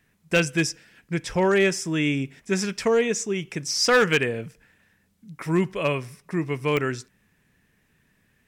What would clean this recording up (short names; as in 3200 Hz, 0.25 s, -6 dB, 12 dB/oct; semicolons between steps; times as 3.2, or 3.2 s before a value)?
clip repair -13 dBFS; de-click